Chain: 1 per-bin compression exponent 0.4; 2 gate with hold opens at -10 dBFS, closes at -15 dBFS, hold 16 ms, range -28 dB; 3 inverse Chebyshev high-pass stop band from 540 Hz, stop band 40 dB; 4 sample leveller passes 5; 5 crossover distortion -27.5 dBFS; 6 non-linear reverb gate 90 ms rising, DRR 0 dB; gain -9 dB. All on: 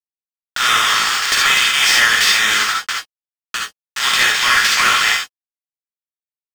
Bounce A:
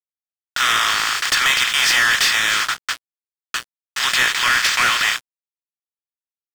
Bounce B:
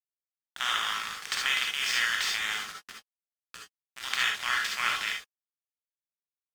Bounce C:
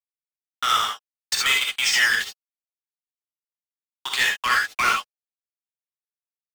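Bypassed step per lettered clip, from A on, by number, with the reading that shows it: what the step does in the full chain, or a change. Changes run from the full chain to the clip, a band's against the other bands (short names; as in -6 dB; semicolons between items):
6, crest factor change -6.0 dB; 4, crest factor change +7.0 dB; 1, 1 kHz band +2.5 dB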